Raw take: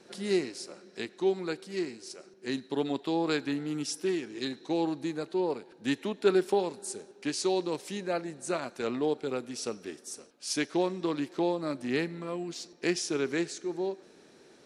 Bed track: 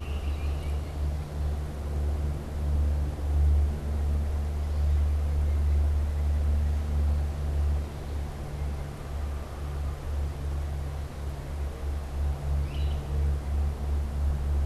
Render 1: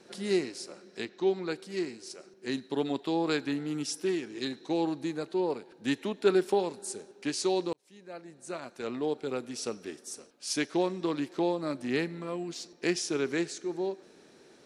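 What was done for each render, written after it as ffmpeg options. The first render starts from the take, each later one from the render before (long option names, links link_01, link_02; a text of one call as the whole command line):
ffmpeg -i in.wav -filter_complex "[0:a]asettb=1/sr,asplit=3[link_01][link_02][link_03];[link_01]atrim=end=1.054[link_04];[link_02]atrim=start=1.05:end=1.51,asetpts=PTS-STARTPTS,afade=type=in:duration=0.004:curve=qsin,afade=type=out:start_time=0.456:duration=0.004:curve=qsin,lowpass=frequency=6300:width=0.5412,lowpass=frequency=6300:width=1.3066[link_05];[link_03]atrim=start=1.506[link_06];[link_04][link_05]acrossfade=duration=0.004:curve1=hsin:curve2=qsin[link_07];[link_07][link_06]acrossfade=duration=0.004:curve1=qsin:curve2=hsin,asplit=2[link_08][link_09];[link_08]atrim=end=7.73,asetpts=PTS-STARTPTS,afade=type=out:start_time=7.726:duration=0.004:curve=hsin[link_10];[link_09]atrim=start=7.73,asetpts=PTS-STARTPTS,afade=type=in:duration=1.72[link_11];[link_10][link_11]concat=n=2:v=0:a=1" out.wav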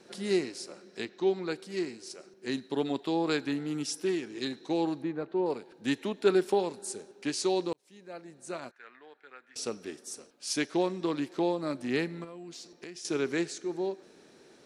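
ffmpeg -i in.wav -filter_complex "[0:a]asettb=1/sr,asplit=3[link_01][link_02][link_03];[link_01]atrim=end=5.024[link_04];[link_02]atrim=start=5.02:end=5.46,asetpts=PTS-STARTPTS,afade=type=in:duration=0.004:curve=qsin,afade=type=out:start_time=0.436:duration=0.004:curve=qsin,lowpass=2000[link_05];[link_03]atrim=start=5.456[link_06];[link_04][link_05]acrossfade=duration=0.004:curve1=hsin:curve2=qsin[link_07];[link_07][link_06]acrossfade=duration=0.004:curve1=qsin:curve2=hsin,asettb=1/sr,asplit=3[link_08][link_09][link_10];[link_08]atrim=end=8.714[link_11];[link_09]atrim=start=8.71:end=9.56,asetpts=PTS-STARTPTS,afade=type=in:duration=0.004:curve=qsin,afade=type=out:start_time=0.846:duration=0.004:curve=qsin,bandpass=frequency=1700:width_type=q:width=4.2[link_12];[link_10]atrim=start=9.556[link_13];[link_11][link_12]acrossfade=duration=0.004:curve1=hsin:curve2=qsin[link_14];[link_14][link_13]acrossfade=duration=0.004:curve1=qsin:curve2=hsin,asettb=1/sr,asplit=3[link_15][link_16][link_17];[link_15]atrim=end=12.244[link_18];[link_16]atrim=start=12.24:end=13.05,asetpts=PTS-STARTPTS,afade=type=in:duration=0.004:curve=qsin,afade=type=out:start_time=0.806:duration=0.004:curve=qsin,acompressor=threshold=-41dB:ratio=6:attack=3.2:release=140:knee=1:detection=peak[link_19];[link_17]atrim=start=13.046[link_20];[link_18][link_19]acrossfade=duration=0.004:curve1=hsin:curve2=qsin[link_21];[link_21][link_20]acrossfade=duration=0.004:curve1=qsin:curve2=hsin" out.wav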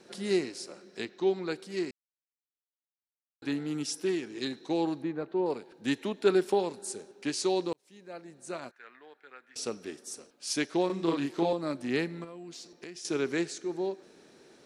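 ffmpeg -i in.wav -filter_complex "[0:a]asettb=1/sr,asplit=3[link_01][link_02][link_03];[link_01]atrim=end=10.864[link_04];[link_02]atrim=start=10.86:end=11.53,asetpts=PTS-STARTPTS,afade=type=in:duration=0.004:curve=qsin,afade=type=out:start_time=0.666:duration=0.004:curve=qsin,asplit=2[link_05][link_06];[link_06]adelay=36,volume=-2dB[link_07];[link_05][link_07]amix=inputs=2:normalize=0,atrim=end_sample=29547[link_08];[link_03]atrim=start=11.526[link_09];[link_04][link_08]acrossfade=duration=0.004:curve1=hsin:curve2=qsin[link_10];[link_10][link_09]acrossfade=duration=0.004:curve1=qsin:curve2=hsin,asplit=3[link_11][link_12][link_13];[link_11]atrim=end=1.91,asetpts=PTS-STARTPTS,afade=type=out:start_time=1.906:duration=0.004:curve=hsin[link_14];[link_12]atrim=start=1.91:end=3.42,asetpts=PTS-STARTPTS,volume=0[link_15];[link_13]atrim=start=3.42,asetpts=PTS-STARTPTS,afade=type=in:duration=0.004:curve=hsin[link_16];[link_14][link_15][link_16]concat=n=3:v=0:a=1" out.wav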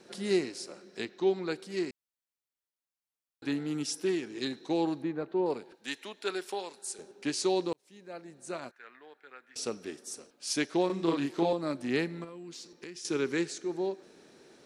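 ffmpeg -i in.wav -filter_complex "[0:a]asettb=1/sr,asplit=3[link_01][link_02][link_03];[link_01]atrim=end=5.754[link_04];[link_02]atrim=start=5.75:end=6.99,asetpts=PTS-STARTPTS,afade=type=in:duration=0.004:curve=qsin,afade=type=out:start_time=1.236:duration=0.004:curve=qsin,highpass=frequency=1400:poles=1[link_05];[link_03]atrim=start=6.986[link_06];[link_04][link_05]acrossfade=duration=0.004:curve1=hsin:curve2=qsin[link_07];[link_07][link_06]acrossfade=duration=0.004:curve1=qsin:curve2=hsin,asettb=1/sr,asplit=3[link_08][link_09][link_10];[link_08]atrim=end=12.294[link_11];[link_09]atrim=start=12.29:end=13.5,asetpts=PTS-STARTPTS,afade=type=in:duration=0.004:curve=qsin,afade=type=out:start_time=1.206:duration=0.004:curve=qsin,equalizer=frequency=670:width=7.8:gain=-13.5[link_12];[link_10]atrim=start=13.496[link_13];[link_11][link_12]acrossfade=duration=0.004:curve1=hsin:curve2=qsin[link_14];[link_14][link_13]acrossfade=duration=0.004:curve1=qsin:curve2=hsin" out.wav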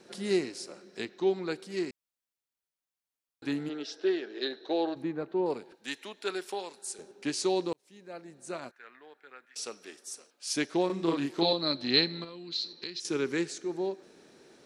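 ffmpeg -i in.wav -filter_complex "[0:a]asplit=3[link_01][link_02][link_03];[link_01]afade=type=out:start_time=3.68:duration=0.02[link_04];[link_02]highpass=400,equalizer=frequency=410:width_type=q:width=4:gain=8,equalizer=frequency=620:width_type=q:width=4:gain=8,equalizer=frequency=1000:width_type=q:width=4:gain=-4,equalizer=frequency=1600:width_type=q:width=4:gain=6,equalizer=frequency=2300:width_type=q:width=4:gain=-5,equalizer=frequency=3800:width_type=q:width=4:gain=5,lowpass=frequency=4500:width=0.5412,lowpass=frequency=4500:width=1.3066,afade=type=in:start_time=3.68:duration=0.02,afade=type=out:start_time=4.95:duration=0.02[link_05];[link_03]afade=type=in:start_time=4.95:duration=0.02[link_06];[link_04][link_05][link_06]amix=inputs=3:normalize=0,asettb=1/sr,asplit=3[link_07][link_08][link_09];[link_07]atrim=end=9.454[link_10];[link_08]atrim=start=9.45:end=10.54,asetpts=PTS-STARTPTS,afade=type=in:duration=0.004:curve=qsin,afade=type=out:start_time=1.086:duration=0.004:curve=qsin,highpass=frequency=910:poles=1[link_11];[link_09]atrim=start=10.536[link_12];[link_10][link_11]acrossfade=duration=0.004:curve1=hsin:curve2=qsin[link_13];[link_13][link_12]acrossfade=duration=0.004:curve1=qsin:curve2=hsin,asettb=1/sr,asplit=3[link_14][link_15][link_16];[link_14]atrim=end=11.414[link_17];[link_15]atrim=start=11.41:end=13,asetpts=PTS-STARTPTS,afade=type=in:duration=0.004:curve=qsin,afade=type=out:start_time=1.586:duration=0.004:curve=qsin,lowpass=frequency=4100:width_type=q:width=16[link_18];[link_16]atrim=start=12.996[link_19];[link_17][link_18]acrossfade=duration=0.004:curve1=hsin:curve2=qsin[link_20];[link_20][link_19]acrossfade=duration=0.004:curve1=qsin:curve2=hsin" out.wav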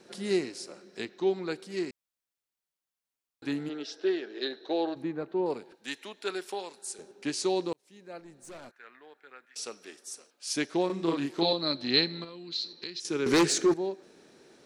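ffmpeg -i in.wav -filter_complex "[0:a]asettb=1/sr,asplit=3[link_01][link_02][link_03];[link_01]atrim=end=8.204[link_04];[link_02]atrim=start=8.2:end=8.79,asetpts=PTS-STARTPTS,afade=type=in:duration=0.004:curve=qsin,afade=type=out:start_time=0.586:duration=0.004:curve=qsin,aeval=exprs='(tanh(126*val(0)+0.25)-tanh(0.25))/126':channel_layout=same[link_05];[link_03]atrim=start=8.786[link_06];[link_04][link_05]acrossfade=duration=0.004:curve1=hsin:curve2=qsin[link_07];[link_07][link_06]acrossfade=duration=0.004:curve1=qsin:curve2=hsin,asettb=1/sr,asplit=3[link_08][link_09][link_10];[link_08]atrim=end=13.264[link_11];[link_09]atrim=start=13.26:end=13.74,asetpts=PTS-STARTPTS,afade=type=in:duration=0.004:curve=qsin,afade=type=out:start_time=0.476:duration=0.004:curve=qsin,aeval=exprs='0.133*sin(PI/2*3.16*val(0)/0.133)':channel_layout=same[link_12];[link_10]atrim=start=13.736[link_13];[link_11][link_12]acrossfade=duration=0.004:curve1=hsin:curve2=qsin[link_14];[link_14][link_13]acrossfade=duration=0.004:curve1=qsin:curve2=hsin" out.wav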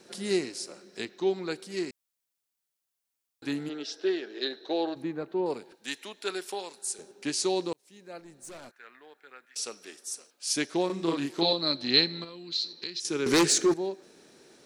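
ffmpeg -i in.wav -af "highshelf=frequency=4600:gain=7" out.wav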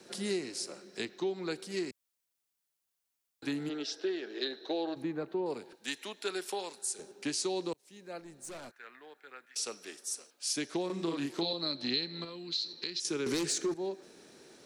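ffmpeg -i in.wav -filter_complex "[0:a]acrossover=split=100|520|2300[link_01][link_02][link_03][link_04];[link_03]alimiter=level_in=5dB:limit=-24dB:level=0:latency=1,volume=-5dB[link_05];[link_01][link_02][link_05][link_04]amix=inputs=4:normalize=0,acompressor=threshold=-31dB:ratio=4" out.wav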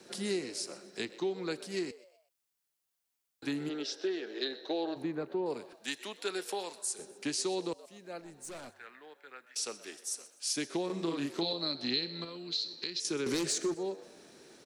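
ffmpeg -i in.wav -filter_complex "[0:a]asplit=4[link_01][link_02][link_03][link_04];[link_02]adelay=126,afreqshift=100,volume=-18.5dB[link_05];[link_03]adelay=252,afreqshift=200,volume=-27.1dB[link_06];[link_04]adelay=378,afreqshift=300,volume=-35.8dB[link_07];[link_01][link_05][link_06][link_07]amix=inputs=4:normalize=0" out.wav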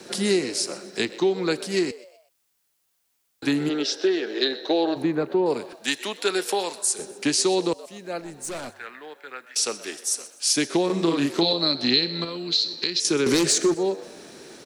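ffmpeg -i in.wav -af "volume=12dB" out.wav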